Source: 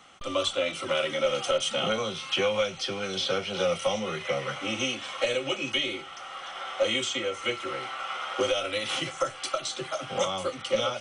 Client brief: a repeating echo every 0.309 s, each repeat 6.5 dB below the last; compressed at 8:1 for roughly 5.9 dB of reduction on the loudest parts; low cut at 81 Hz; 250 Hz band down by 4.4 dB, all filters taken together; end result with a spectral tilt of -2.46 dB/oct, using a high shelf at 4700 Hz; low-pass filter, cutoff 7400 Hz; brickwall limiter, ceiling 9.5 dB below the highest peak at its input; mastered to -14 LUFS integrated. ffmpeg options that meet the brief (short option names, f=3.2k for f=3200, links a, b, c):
-af "highpass=81,lowpass=7.4k,equalizer=f=250:t=o:g=-6,highshelf=f=4.7k:g=-3,acompressor=threshold=-28dB:ratio=8,alimiter=level_in=3.5dB:limit=-24dB:level=0:latency=1,volume=-3.5dB,aecho=1:1:309|618|927|1236|1545|1854:0.473|0.222|0.105|0.0491|0.0231|0.0109,volume=21dB"